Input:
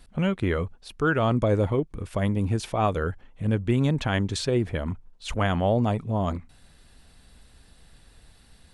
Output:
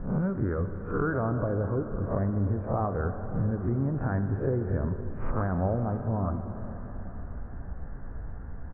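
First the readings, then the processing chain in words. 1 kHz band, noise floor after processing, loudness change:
-5.0 dB, -39 dBFS, -4.0 dB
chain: spectral swells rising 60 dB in 0.32 s; steep low-pass 1600 Hz 48 dB/oct; low shelf 330 Hz +5 dB; compressor 6:1, threshold -36 dBFS, peak gain reduction 20 dB; on a send: echo 0.553 s -20.5 dB; on the sum: plate-style reverb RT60 4.8 s, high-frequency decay 0.9×, DRR 7 dB; gain +9 dB

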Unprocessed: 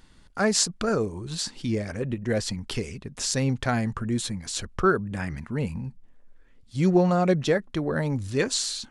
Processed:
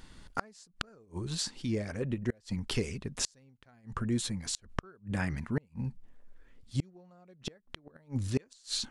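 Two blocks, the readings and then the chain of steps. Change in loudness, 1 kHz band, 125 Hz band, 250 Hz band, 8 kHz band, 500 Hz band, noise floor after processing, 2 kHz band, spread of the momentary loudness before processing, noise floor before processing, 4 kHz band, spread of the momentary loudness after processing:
-10.0 dB, -13.5 dB, -8.0 dB, -10.0 dB, -10.0 dB, -15.0 dB, -65 dBFS, -11.0 dB, 10 LU, -54 dBFS, -7.5 dB, 12 LU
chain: flipped gate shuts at -17 dBFS, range -35 dB; vocal rider within 4 dB 0.5 s; gain -1.5 dB

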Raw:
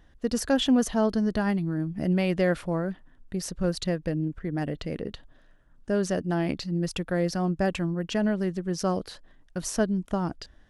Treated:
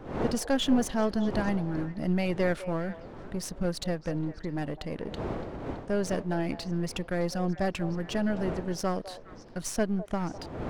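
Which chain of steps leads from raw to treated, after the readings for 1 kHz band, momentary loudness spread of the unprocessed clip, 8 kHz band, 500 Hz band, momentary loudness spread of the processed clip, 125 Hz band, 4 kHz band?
-1.0 dB, 10 LU, -2.5 dB, -2.5 dB, 9 LU, -3.0 dB, -2.5 dB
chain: half-wave gain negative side -7 dB; wind noise 490 Hz -41 dBFS; delay with a stepping band-pass 0.205 s, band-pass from 660 Hz, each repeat 1.4 oct, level -11 dB

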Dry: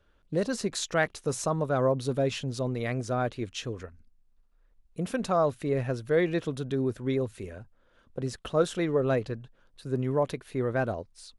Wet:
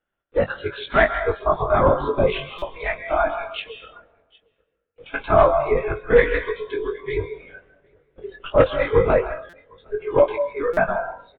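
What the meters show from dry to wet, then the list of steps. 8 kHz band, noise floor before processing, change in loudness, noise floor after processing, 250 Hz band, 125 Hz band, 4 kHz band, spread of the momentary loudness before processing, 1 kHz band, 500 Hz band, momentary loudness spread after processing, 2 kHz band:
under -30 dB, -65 dBFS, +8.5 dB, -75 dBFS, 0.0 dB, +0.5 dB, +3.5 dB, 12 LU, +11.0 dB, +9.0 dB, 15 LU, +11.0 dB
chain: one-sided fold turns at -16.5 dBFS; steep high-pass 400 Hz 72 dB/oct; in parallel at -5.5 dB: bit-crush 7-bit; on the sum: LPC vocoder at 8 kHz whisper; Chebyshev low-pass 2400 Hz, order 2; doubler 21 ms -6 dB; on a send: echo 0.762 s -19 dB; on the sum: plate-style reverb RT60 0.9 s, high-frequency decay 0.8×, pre-delay 0.115 s, DRR 7 dB; spectral noise reduction 16 dB; stuck buffer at 2.58/9.49/10.73, samples 256, times 6; gain +6.5 dB

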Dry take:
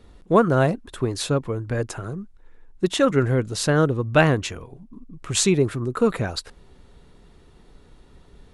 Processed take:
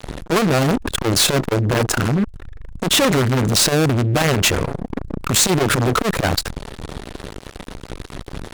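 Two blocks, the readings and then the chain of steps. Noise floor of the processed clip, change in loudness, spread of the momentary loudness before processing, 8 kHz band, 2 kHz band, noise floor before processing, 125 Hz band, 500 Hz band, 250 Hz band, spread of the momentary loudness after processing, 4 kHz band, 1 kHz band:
-41 dBFS, +4.5 dB, 13 LU, +9.5 dB, +5.5 dB, -52 dBFS, +4.5 dB, +1.0 dB, +4.0 dB, 19 LU, +11.0 dB, +4.5 dB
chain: fuzz box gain 43 dB, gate -47 dBFS; core saturation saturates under 260 Hz; gain +1 dB

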